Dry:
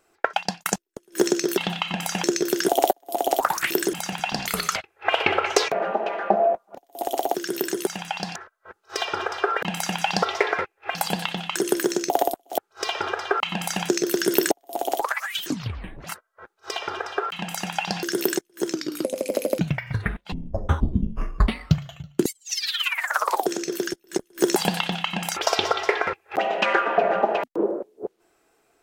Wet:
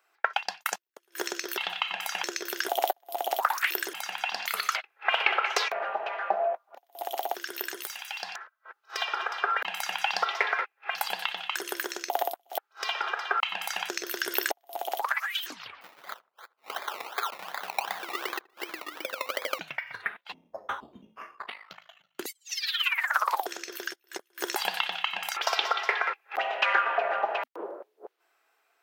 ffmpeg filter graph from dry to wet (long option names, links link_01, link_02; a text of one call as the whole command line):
ffmpeg -i in.wav -filter_complex "[0:a]asettb=1/sr,asplit=3[link_01][link_02][link_03];[link_01]atrim=end=7.834[link_04];[link_02]atrim=start=7.83:end=8.23,asetpts=PTS-STARTPTS,afade=type=in:duration=0.004:curve=qsin,afade=type=out:start_time=0.396:duration=0.004:curve=qsin,highpass=frequency=1500:poles=1,highshelf=frequency=7600:gain=11.5,aeval=exprs='clip(val(0),-1,0.0251)':channel_layout=same[link_05];[link_03]atrim=start=8.226[link_06];[link_04][link_05]acrossfade=duration=0.004:curve1=hsin:curve2=qsin[link_07];[link_07][link_06]acrossfade=duration=0.004:curve1=qsin:curve2=hsin,asettb=1/sr,asplit=3[link_08][link_09][link_10];[link_08]atrim=end=15.814[link_11];[link_09]atrim=start=15.81:end=19.59,asetpts=PTS-STARTPTS,afade=type=in:duration=0.004:curve=qsin,afade=type=out:start_time=3.776:duration=0.004:curve=qsin,acrusher=samples=22:mix=1:aa=0.000001:lfo=1:lforange=13.2:lforate=2.7,asplit=2[link_12][link_13];[link_13]adelay=78,lowpass=frequency=1200:poles=1,volume=-22dB,asplit=2[link_14][link_15];[link_15]adelay=78,lowpass=frequency=1200:poles=1,volume=0.38,asplit=2[link_16][link_17];[link_17]adelay=78,lowpass=frequency=1200:poles=1,volume=0.38[link_18];[link_12][link_14][link_16][link_18]amix=inputs=4:normalize=0,atrim=end_sample=166698[link_19];[link_10]atrim=start=19.586[link_20];[link_11][link_19]acrossfade=duration=0.004:curve1=hsin:curve2=qsin[link_21];[link_21][link_20]acrossfade=duration=0.004:curve1=qsin:curve2=hsin,asettb=1/sr,asplit=3[link_22][link_23][link_24];[link_22]atrim=end=21.354[link_25];[link_23]atrim=start=21.35:end=22.15,asetpts=PTS-STARTPTS,afade=type=in:duration=0.004:curve=qsin,afade=type=out:start_time=0.796:duration=0.004:curve=qsin,highpass=frequency=390:poles=1,highshelf=frequency=2800:gain=-6.5,aeval=exprs='val(0)*sin(2*PI*26*n/s)':channel_layout=same[link_26];[link_24]atrim=start=22.146[link_27];[link_25][link_26]acrossfade=duration=0.004:curve1=hsin:curve2=qsin[link_28];[link_28][link_27]acrossfade=duration=0.004:curve1=qsin:curve2=hsin,highpass=1000,equalizer=frequency=8100:width=0.81:gain=-11" out.wav